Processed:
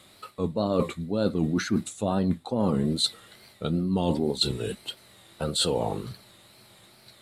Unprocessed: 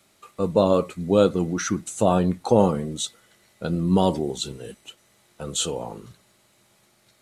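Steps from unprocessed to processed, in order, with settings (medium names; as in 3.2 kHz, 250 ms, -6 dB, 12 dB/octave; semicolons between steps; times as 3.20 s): graphic EQ with 31 bands 100 Hz +6 dB, 4 kHz +8 dB, 6.3 kHz -11 dB; wow and flutter 110 cents; dynamic bell 240 Hz, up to +7 dB, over -35 dBFS, Q 2.4; reverse; compression 16:1, threshold -27 dBFS, peak gain reduction 19.5 dB; reverse; trim +6 dB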